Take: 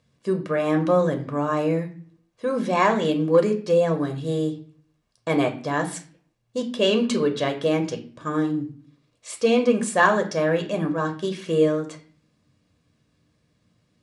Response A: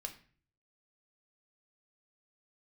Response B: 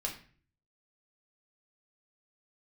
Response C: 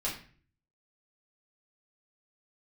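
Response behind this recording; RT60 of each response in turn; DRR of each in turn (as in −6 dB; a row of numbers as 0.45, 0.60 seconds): A; 0.45, 0.45, 0.45 seconds; 4.5, −0.5, −6.5 decibels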